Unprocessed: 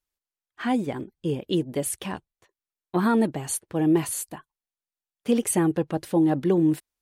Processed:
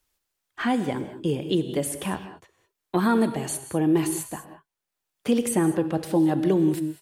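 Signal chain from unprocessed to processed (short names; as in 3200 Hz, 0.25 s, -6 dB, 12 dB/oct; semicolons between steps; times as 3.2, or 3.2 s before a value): non-linear reverb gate 0.23 s flat, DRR 9.5 dB; three-band squash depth 40%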